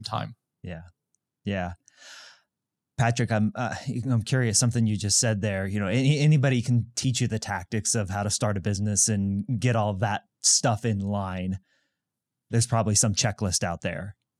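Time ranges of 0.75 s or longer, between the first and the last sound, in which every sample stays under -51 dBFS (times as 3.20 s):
11.59–12.51 s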